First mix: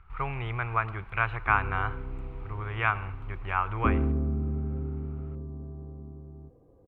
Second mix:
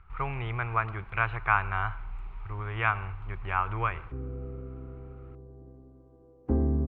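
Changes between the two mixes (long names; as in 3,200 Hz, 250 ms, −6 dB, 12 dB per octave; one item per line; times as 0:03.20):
background: entry +2.65 s
master: add high-frequency loss of the air 51 metres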